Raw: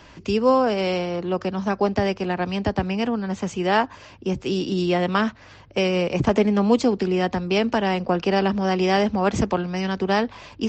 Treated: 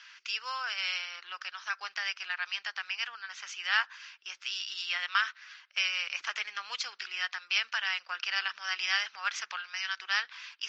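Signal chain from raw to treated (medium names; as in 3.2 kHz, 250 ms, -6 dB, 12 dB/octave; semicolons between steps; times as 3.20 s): Chebyshev band-pass 1.4–5.9 kHz, order 3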